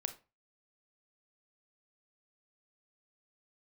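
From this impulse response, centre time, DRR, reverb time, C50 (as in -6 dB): 7 ms, 8.5 dB, 0.30 s, 14.0 dB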